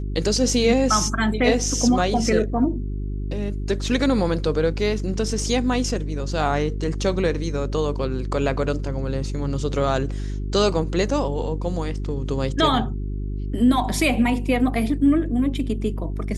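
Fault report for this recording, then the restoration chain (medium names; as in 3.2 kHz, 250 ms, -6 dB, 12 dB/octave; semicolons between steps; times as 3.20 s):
hum 50 Hz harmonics 8 -27 dBFS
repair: de-hum 50 Hz, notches 8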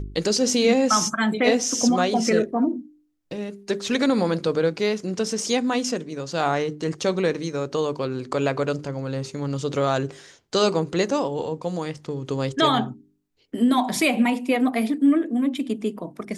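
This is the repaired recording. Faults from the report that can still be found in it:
nothing left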